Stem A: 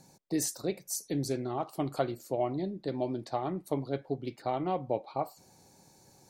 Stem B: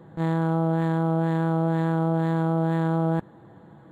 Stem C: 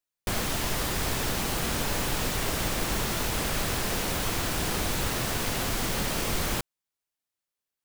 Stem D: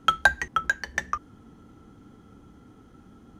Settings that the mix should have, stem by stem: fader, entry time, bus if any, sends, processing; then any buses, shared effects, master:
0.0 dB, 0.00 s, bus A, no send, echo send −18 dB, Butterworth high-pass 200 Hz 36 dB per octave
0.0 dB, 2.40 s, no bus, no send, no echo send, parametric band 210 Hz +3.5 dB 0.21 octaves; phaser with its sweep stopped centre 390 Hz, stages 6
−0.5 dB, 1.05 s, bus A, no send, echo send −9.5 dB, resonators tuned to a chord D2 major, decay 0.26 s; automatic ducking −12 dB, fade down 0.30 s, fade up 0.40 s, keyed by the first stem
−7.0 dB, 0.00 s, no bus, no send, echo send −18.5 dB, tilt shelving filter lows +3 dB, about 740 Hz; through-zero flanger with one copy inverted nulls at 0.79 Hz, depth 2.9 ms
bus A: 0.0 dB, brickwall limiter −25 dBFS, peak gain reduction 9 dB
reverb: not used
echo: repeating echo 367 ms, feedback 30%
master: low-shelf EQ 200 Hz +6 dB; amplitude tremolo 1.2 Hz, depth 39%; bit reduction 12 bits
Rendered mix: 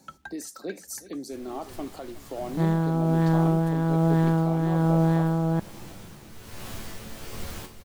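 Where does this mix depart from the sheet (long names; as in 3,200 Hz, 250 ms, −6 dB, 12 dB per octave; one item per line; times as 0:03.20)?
stem B: missing phaser with its sweep stopped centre 390 Hz, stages 6
stem D −7.0 dB → −17.5 dB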